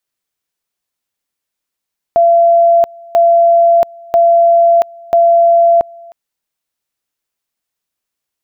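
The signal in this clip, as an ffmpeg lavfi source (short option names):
-f lavfi -i "aevalsrc='pow(10,(-5-26.5*gte(mod(t,0.99),0.68))/20)*sin(2*PI*680*t)':d=3.96:s=44100"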